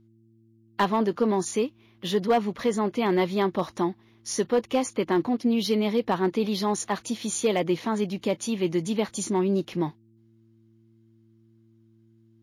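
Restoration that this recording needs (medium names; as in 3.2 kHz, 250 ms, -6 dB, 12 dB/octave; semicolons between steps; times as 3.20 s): clip repair -15 dBFS; de-hum 112.3 Hz, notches 3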